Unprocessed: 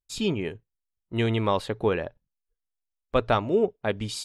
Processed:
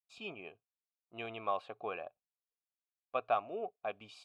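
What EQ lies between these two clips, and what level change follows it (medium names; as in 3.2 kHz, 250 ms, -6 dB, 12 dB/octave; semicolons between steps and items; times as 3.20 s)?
vowel filter a; peaking EQ 560 Hz -4 dB 2.5 oct; dynamic bell 1.7 kHz, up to +5 dB, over -56 dBFS, Q 2.3; +1.5 dB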